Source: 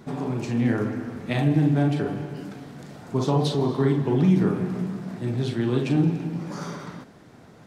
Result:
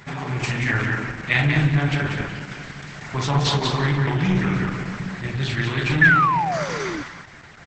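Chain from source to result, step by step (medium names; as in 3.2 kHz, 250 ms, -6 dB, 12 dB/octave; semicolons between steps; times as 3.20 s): on a send: feedback delay 185 ms, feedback 30%, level -5 dB; on the sum: Schroeder reverb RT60 0.9 s, combs from 32 ms, DRR 19 dB; 2.76–3.23 s: dynamic bell 2.3 kHz, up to +5 dB, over -52 dBFS, Q 1.6; 3.74–5.04 s: upward compressor, threshold -27 dBFS; 6.01–7.03 s: painted sound fall 280–1800 Hz -25 dBFS; hum notches 60/120/180/240 Hz; saturation -12.5 dBFS, distortion -19 dB; graphic EQ 250/500/2000 Hz -11/-11/+10 dB; trim +7.5 dB; Opus 10 kbps 48 kHz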